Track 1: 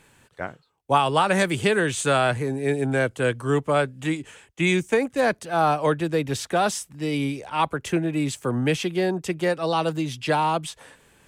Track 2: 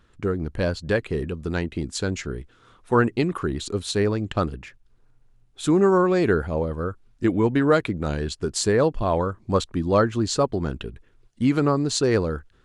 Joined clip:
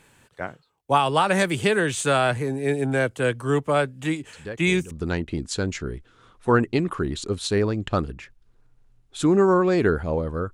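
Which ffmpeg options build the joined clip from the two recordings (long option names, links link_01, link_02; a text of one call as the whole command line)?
ffmpeg -i cue0.wav -i cue1.wav -filter_complex "[1:a]asplit=2[link_01][link_02];[0:a]apad=whole_dur=10.53,atrim=end=10.53,atrim=end=4.912[link_03];[link_02]atrim=start=1.348:end=6.97[link_04];[link_01]atrim=start=0.77:end=1.35,asetpts=PTS-STARTPTS,volume=-12dB,afade=type=in:duration=0.004:curve=hsin,afade=type=out:start_time=0.576:duration=0.004:curve=hsin,adelay=190953S[link_05];[link_03][link_04]acrossfade=duration=0.004:curve1=hsin:curve2=hsin[link_06];[link_06][link_05]amix=inputs=2:normalize=0" out.wav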